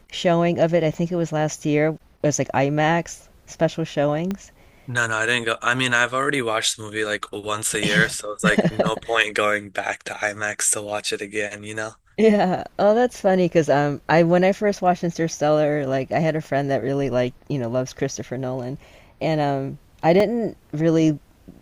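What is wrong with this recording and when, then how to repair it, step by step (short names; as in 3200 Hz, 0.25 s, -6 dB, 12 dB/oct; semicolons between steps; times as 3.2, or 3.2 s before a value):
4.31 pop -14 dBFS
20.2 gap 3.4 ms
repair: de-click; interpolate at 20.2, 3.4 ms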